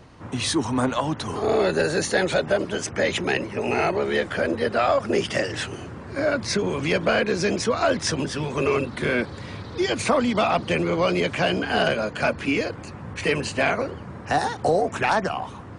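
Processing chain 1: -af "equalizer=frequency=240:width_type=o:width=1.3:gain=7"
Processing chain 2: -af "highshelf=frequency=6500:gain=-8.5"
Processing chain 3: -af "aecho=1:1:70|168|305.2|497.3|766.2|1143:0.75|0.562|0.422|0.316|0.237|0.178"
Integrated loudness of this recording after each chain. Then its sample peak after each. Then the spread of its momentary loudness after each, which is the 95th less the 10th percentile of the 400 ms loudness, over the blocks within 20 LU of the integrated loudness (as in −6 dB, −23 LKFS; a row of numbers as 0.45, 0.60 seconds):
−21.0, −24.0, −20.5 LKFS; −7.5, −10.0, −5.5 dBFS; 7, 7, 6 LU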